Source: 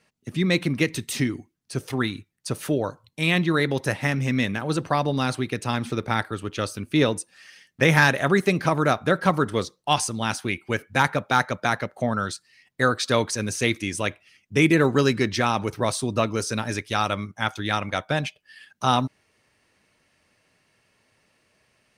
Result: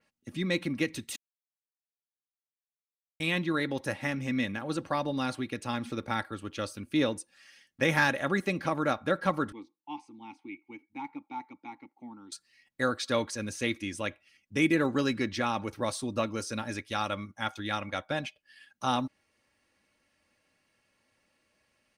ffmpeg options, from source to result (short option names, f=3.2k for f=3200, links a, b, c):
-filter_complex "[0:a]asettb=1/sr,asplit=3[a][b][c];[a]atrim=end=9.524[d];[b]atrim=start=9.52:end=12.32,asetpts=PTS-STARTPTS,afade=t=in:d=0.004:c=qsin,afade=t=out:st=2.796:d=0.004:c=qsin,asplit=3[e][f][g];[e]bandpass=f=300:t=q:w=8,volume=0dB[h];[f]bandpass=f=870:t=q:w=8,volume=-6dB[i];[g]bandpass=f=2.24k:t=q:w=8,volume=-9dB[j];[h][i][j]amix=inputs=3:normalize=0[k];[c]atrim=start=12.316[l];[d][k]acrossfade=d=0.004:c1=hsin:c2=qsin[m];[m][l]acrossfade=d=0.004:c1=qsin:c2=hsin,asplit=3[n][o][p];[n]atrim=end=1.16,asetpts=PTS-STARTPTS,afade=t=out:st=1.156:d=0.004:c=hsin[q];[o]atrim=start=1.16:end=3.2,asetpts=PTS-STARTPTS,volume=0[r];[p]atrim=start=3.2,asetpts=PTS-STARTPTS,afade=t=in:d=0.004:c=hsin[s];[q][r][s]concat=n=3:v=0:a=1,aecho=1:1:3.6:0.42,adynamicequalizer=threshold=0.0126:dfrequency=4700:dqfactor=0.7:tfrequency=4700:tqfactor=0.7:attack=5:release=100:ratio=0.375:range=2.5:mode=cutabove:tftype=highshelf,volume=-8dB"